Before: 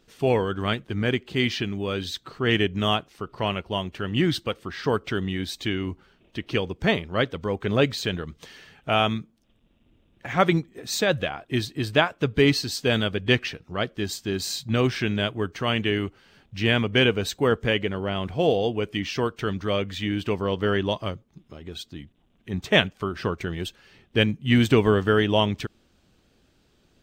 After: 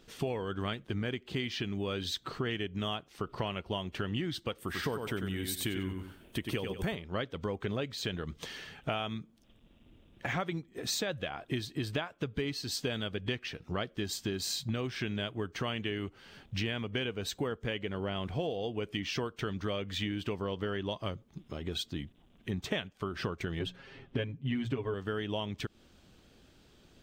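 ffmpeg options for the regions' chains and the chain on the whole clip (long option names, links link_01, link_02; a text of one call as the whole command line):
ffmpeg -i in.wav -filter_complex "[0:a]asettb=1/sr,asplit=3[link_01][link_02][link_03];[link_01]atrim=end=4.584[link_04];[link_02]atrim=start=4.58:end=6.95,asetpts=PTS-STARTPTS,afade=type=in:duration=0.004:curve=qsin,afade=type=out:start_time=2.366:duration=0.004:curve=qsin,highshelf=frequency=7500:width_type=q:width=1.5:gain=13,aecho=1:1:94|188|282:0.473|0.114|0.0273,atrim=end_sample=104517[link_05];[link_03]atrim=start=6.946[link_06];[link_04][link_05]acrossfade=duration=0.004:curve1=hsin:curve2=qsin[link_07];[link_07][link_06]acrossfade=duration=0.004:curve1=qsin:curve2=hsin,asettb=1/sr,asplit=3[link_08][link_09][link_10];[link_08]atrim=end=23.594[link_11];[link_09]atrim=start=23.59:end=24.94,asetpts=PTS-STARTPTS,afade=type=in:duration=0.004:curve=qsin,afade=type=out:start_time=1.346:duration=0.004:curve=qsin,lowpass=frequency=1800:poles=1,bandreject=frequency=60:width_type=h:width=6,bandreject=frequency=120:width_type=h:width=6,bandreject=frequency=180:width_type=h:width=6,aecho=1:1:7.4:0.98,atrim=end_sample=59535[link_12];[link_10]atrim=start=24.936[link_13];[link_11][link_12]acrossfade=duration=0.004:curve1=hsin:curve2=qsin[link_14];[link_14][link_13]acrossfade=duration=0.004:curve1=qsin:curve2=hsin,equalizer=frequency=3300:width=7.1:gain=2.5,acompressor=threshold=-33dB:ratio=12,volume=2dB" out.wav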